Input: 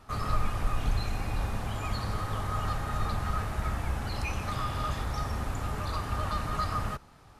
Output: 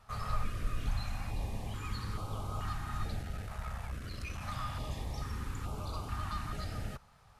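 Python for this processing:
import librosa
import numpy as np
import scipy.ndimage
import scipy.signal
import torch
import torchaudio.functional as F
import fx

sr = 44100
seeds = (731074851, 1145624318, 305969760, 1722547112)

y = fx.tube_stage(x, sr, drive_db=24.0, bias=0.5, at=(3.22, 4.41))
y = fx.filter_held_notch(y, sr, hz=2.3, low_hz=310.0, high_hz=1800.0)
y = y * 10.0 ** (-5.5 / 20.0)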